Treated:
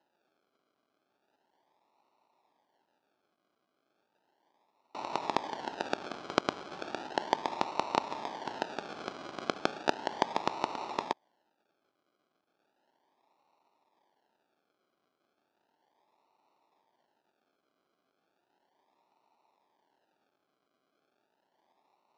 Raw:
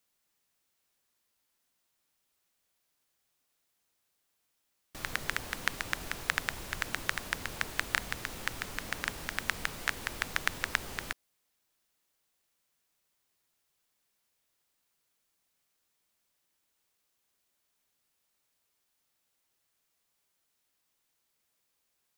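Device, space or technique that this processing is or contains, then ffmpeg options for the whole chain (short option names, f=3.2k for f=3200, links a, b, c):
circuit-bent sampling toy: -af "acrusher=samples=38:mix=1:aa=0.000001:lfo=1:lforange=22.8:lforate=0.35,highpass=420,equalizer=f=490:t=q:w=4:g=-7,equalizer=f=900:t=q:w=4:g=9,equalizer=f=2.1k:t=q:w=4:g=-6,lowpass=f=5.4k:w=0.5412,lowpass=f=5.4k:w=1.3066,volume=6dB"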